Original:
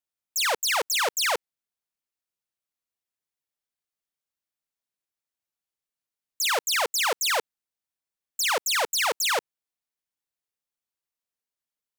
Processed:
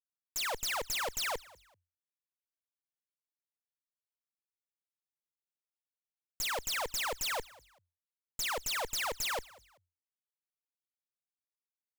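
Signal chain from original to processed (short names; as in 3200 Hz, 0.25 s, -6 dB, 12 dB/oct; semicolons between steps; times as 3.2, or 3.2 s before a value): Schmitt trigger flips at -29 dBFS; on a send: frequency-shifting echo 0.192 s, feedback 31%, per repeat +43 Hz, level -22 dB; on the sum: gain -2.5 dB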